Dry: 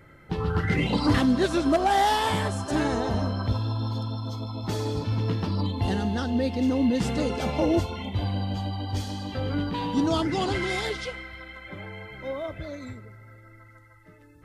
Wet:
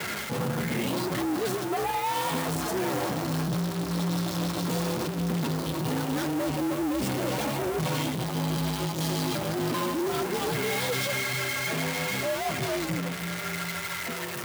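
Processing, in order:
spike at every zero crossing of −18.5 dBFS
high-shelf EQ 2,200 Hz −10 dB
reversed playback
downward compressor, threshold −31 dBFS, peak gain reduction 13.5 dB
reversed playback
leveller curve on the samples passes 5
frequency shifter +64 Hz
flanger 0.79 Hz, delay 2 ms, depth 8.2 ms, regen −51%

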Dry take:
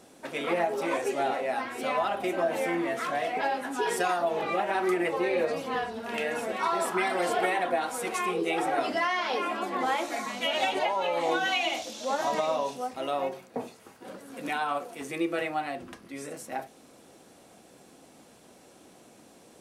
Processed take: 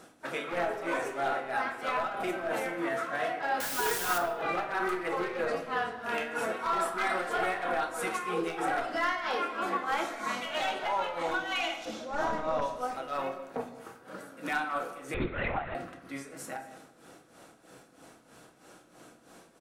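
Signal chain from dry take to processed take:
wavefolder on the positive side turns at −21.5 dBFS
amplitude tremolo 3.1 Hz, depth 83%
brickwall limiter −25.5 dBFS, peak gain reduction 10 dB
parametric band 1,400 Hz +9.5 dB 0.67 octaves
double-tracking delay 30 ms −13 dB
single-tap delay 211 ms −18.5 dB
0:03.60–0:04.18: bit-depth reduction 6 bits, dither triangular
0:11.85–0:12.62: spectral tilt −2.5 dB per octave
convolution reverb RT60 0.95 s, pre-delay 6 ms, DRR 6 dB
0:15.14–0:15.75: linear-prediction vocoder at 8 kHz whisper

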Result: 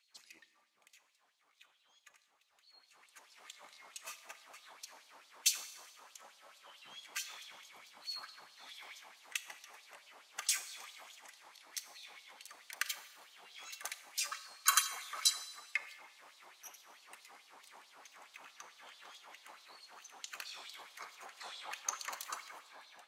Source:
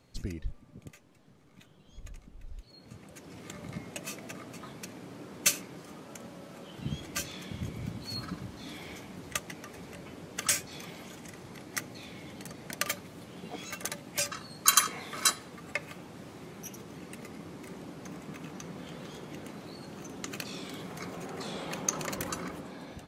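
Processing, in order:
auto-filter high-pass sine 4.6 Hz 820–4,200 Hz
four-comb reverb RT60 1.2 s, combs from 28 ms, DRR 12.5 dB
level −8 dB

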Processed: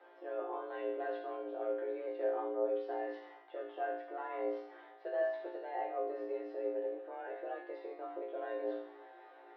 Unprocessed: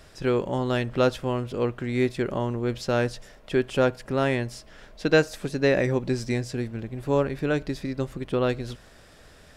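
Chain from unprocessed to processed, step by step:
in parallel at −0.5 dB: brickwall limiter −17 dBFS, peak gain reduction 10.5 dB
on the sum: parametric band 2,400 Hz −14 dB 1.3 octaves
soft clipping −11 dBFS, distortion −20 dB
reversed playback
downward compressor, threshold −28 dBFS, peak gain reduction 12 dB
reversed playback
resonators tuned to a chord A#2 fifth, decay 0.71 s
single-sideband voice off tune +180 Hz 170–2,900 Hz
level +12 dB

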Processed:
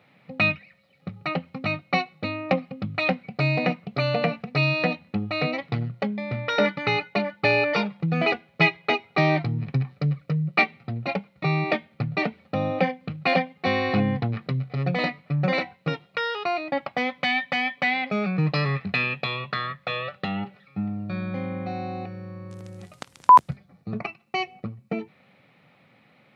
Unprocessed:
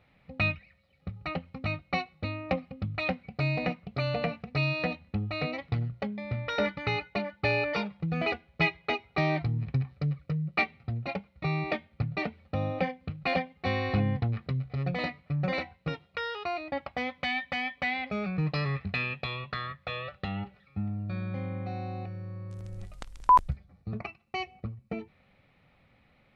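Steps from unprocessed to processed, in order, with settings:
high-pass filter 130 Hz 24 dB per octave
level +7 dB

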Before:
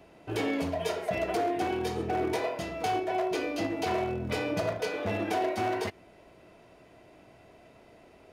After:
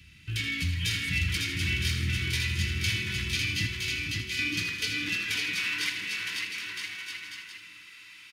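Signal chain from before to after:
0:03.66–0:04.39: guitar amp tone stack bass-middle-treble 5-5-5
high-pass filter sweep 64 Hz → 940 Hz, 0:02.99–0:05.74
on a send: bouncing-ball delay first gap 550 ms, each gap 0.75×, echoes 5
on the sum: automatic gain control gain up to 5 dB
Chebyshev band-stop filter 120–3,400 Hz, order 2
parametric band 1,900 Hz +9 dB 1.8 octaves
echo with a time of its own for lows and highs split 450 Hz, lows 454 ms, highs 80 ms, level −10 dB
in parallel at +1.5 dB: downward compressor, threshold −43 dBFS, peak gain reduction 16.5 dB
on the sum: AAC 128 kbit/s 44,100 Hz

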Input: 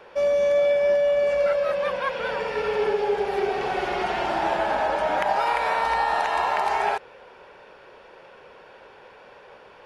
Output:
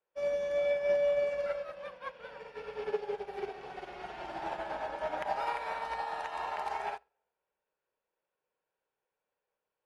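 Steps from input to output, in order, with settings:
on a send at −10 dB: convolution reverb RT60 1.2 s, pre-delay 6 ms
on the sum: expander for the loud parts 2.5 to 1, over −41 dBFS
level −7 dB

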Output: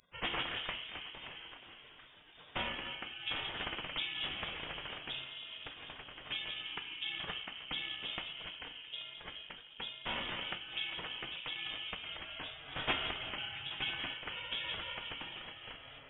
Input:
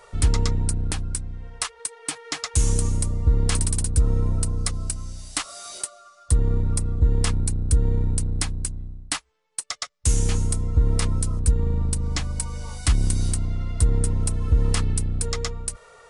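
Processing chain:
high-pass filter 42 Hz 12 dB per octave
gate on every frequency bin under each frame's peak −30 dB weak
low-shelf EQ 380 Hz +4 dB
echo through a band-pass that steps 166 ms, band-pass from 290 Hz, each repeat 0.7 octaves, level −5 dB
delay with pitch and tempo change per echo 85 ms, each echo −4 semitones, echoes 2, each echo −6 dB
rectangular room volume 230 cubic metres, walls mixed, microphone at 0.42 metres
voice inversion scrambler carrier 3,600 Hz
amplitude modulation by smooth noise, depth 55%
level +8 dB

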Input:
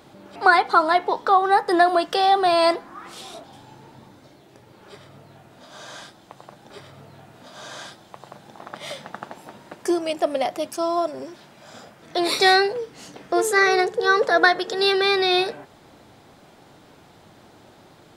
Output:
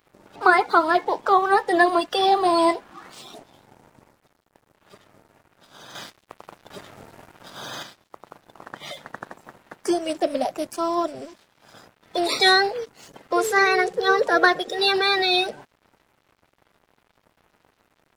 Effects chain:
spectral magnitudes quantised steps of 30 dB
dead-zone distortion −47.5 dBFS
0:05.95–0:07.83: leveller curve on the samples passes 2

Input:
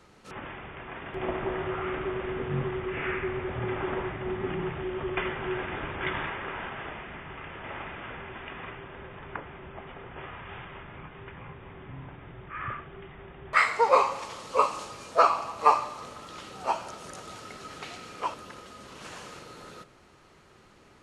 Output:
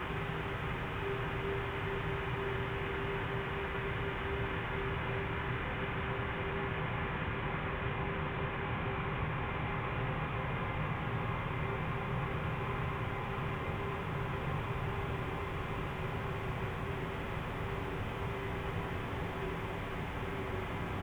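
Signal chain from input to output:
in parallel at −5.5 dB: bit-depth reduction 8 bits, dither none
on the sum: downsampling to 8,000 Hz
surface crackle 13 per second −39 dBFS
extreme stretch with random phases 38×, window 0.50 s, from 0:11.18
level +4 dB

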